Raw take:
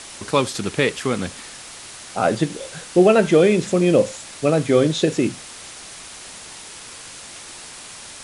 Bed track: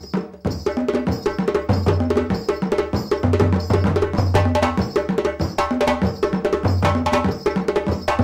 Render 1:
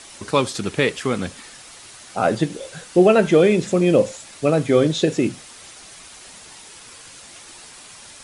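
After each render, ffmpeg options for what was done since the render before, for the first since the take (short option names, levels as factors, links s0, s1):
-af "afftdn=nr=6:nf=-39"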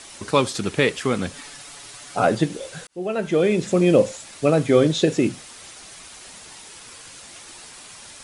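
-filter_complex "[0:a]asettb=1/sr,asplit=3[s0][s1][s2];[s0]atrim=end=1.334[s3];[s1]atrim=start=1.33:end=2.25,asetpts=PTS-STARTPTS,afade=t=in:d=0.004:c=qsin,afade=t=out:st=0.916:d=0.004:c=qsin,aecho=1:1:7:0.65,atrim=end_sample=40572[s4];[s2]atrim=start=2.246[s5];[s3][s4]acrossfade=d=0.004:c1=hsin:c2=qsin[s6];[s6][s5]acrossfade=d=0.004:c1=qsin:c2=hsin,asplit=2[s7][s8];[s7]atrim=end=2.87,asetpts=PTS-STARTPTS,afade=t=out:st=2.866:d=0.004:c=hsin[s9];[s8]atrim=start=2.87,asetpts=PTS-STARTPTS,afade=t=in:d=0.93[s10];[s9][s10]concat=n=2:v=0:a=1"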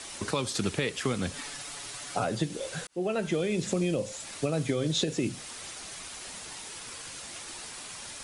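-filter_complex "[0:a]alimiter=limit=0.251:level=0:latency=1:release=304,acrossover=split=140|3000[s0][s1][s2];[s1]acompressor=threshold=0.0447:ratio=6[s3];[s0][s3][s2]amix=inputs=3:normalize=0"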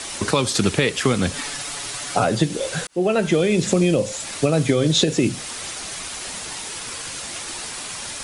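-af "volume=3.35"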